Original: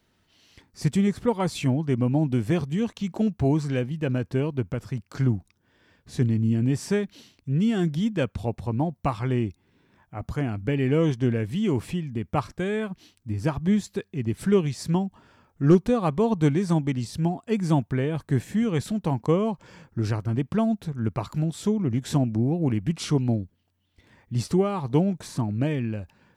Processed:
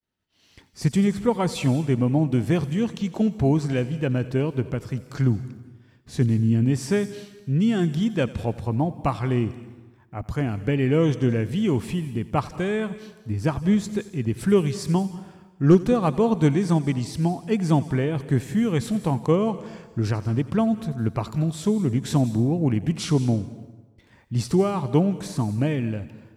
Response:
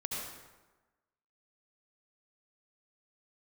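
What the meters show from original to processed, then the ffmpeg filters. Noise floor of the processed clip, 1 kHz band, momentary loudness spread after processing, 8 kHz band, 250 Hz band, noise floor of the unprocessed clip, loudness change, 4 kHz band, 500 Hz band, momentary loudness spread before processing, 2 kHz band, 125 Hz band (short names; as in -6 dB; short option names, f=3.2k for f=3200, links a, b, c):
-55 dBFS, +2.0 dB, 9 LU, +2.5 dB, +2.0 dB, -69 dBFS, +2.0 dB, +2.0 dB, +2.0 dB, 8 LU, +2.0 dB, +2.0 dB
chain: -filter_complex "[0:a]agate=range=-33dB:threshold=-55dB:ratio=3:detection=peak,asplit=2[a][b];[1:a]atrim=start_sample=2205,highshelf=f=4.9k:g=11.5,adelay=88[c];[b][c]afir=irnorm=-1:irlink=0,volume=-18.5dB[d];[a][d]amix=inputs=2:normalize=0,volume=2dB"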